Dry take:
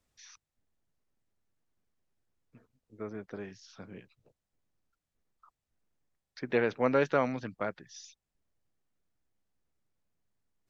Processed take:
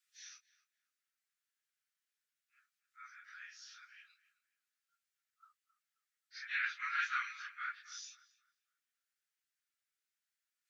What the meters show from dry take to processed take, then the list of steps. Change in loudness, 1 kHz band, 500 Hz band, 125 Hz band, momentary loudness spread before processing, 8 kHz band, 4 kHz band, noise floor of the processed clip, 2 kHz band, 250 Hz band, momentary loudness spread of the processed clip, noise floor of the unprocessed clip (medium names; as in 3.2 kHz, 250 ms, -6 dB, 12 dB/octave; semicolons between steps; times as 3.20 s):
-7.5 dB, -6.5 dB, under -40 dB, under -40 dB, 22 LU, no reading, +1.0 dB, under -85 dBFS, +1.0 dB, under -40 dB, 20 LU, under -85 dBFS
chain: phase randomisation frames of 100 ms; steep high-pass 1.3 kHz 72 dB/octave; filtered feedback delay 267 ms, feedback 32%, low-pass 2 kHz, level -14.5 dB; trim +1 dB